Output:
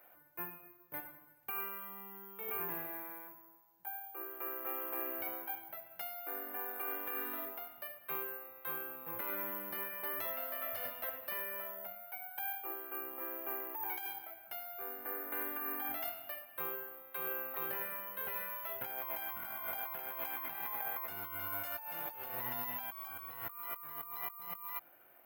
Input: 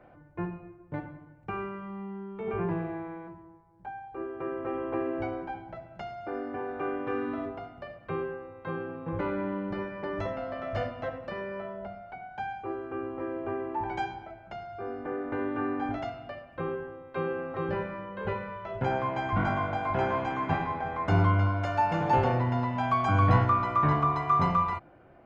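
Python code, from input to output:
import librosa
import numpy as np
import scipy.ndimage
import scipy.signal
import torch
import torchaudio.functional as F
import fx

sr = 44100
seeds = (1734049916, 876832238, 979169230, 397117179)

y = np.diff(x, prepend=0.0)
y = fx.over_compress(y, sr, threshold_db=-52.0, ratio=-1.0)
y = fx.lowpass(y, sr, hz=3100.0, slope=6)
y = (np.kron(y[::3], np.eye(3)[0]) * 3)[:len(y)]
y = y * librosa.db_to_amplitude(7.0)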